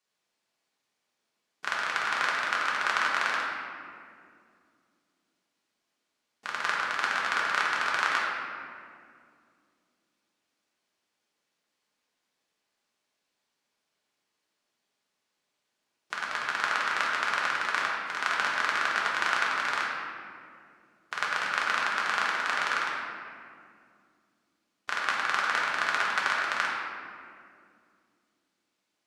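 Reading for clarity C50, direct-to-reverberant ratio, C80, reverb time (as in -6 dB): -0.5 dB, -5.0 dB, 1.0 dB, 2.3 s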